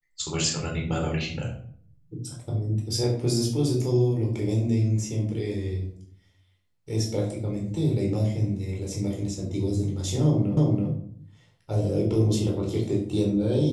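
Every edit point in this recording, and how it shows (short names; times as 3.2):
10.57 repeat of the last 0.33 s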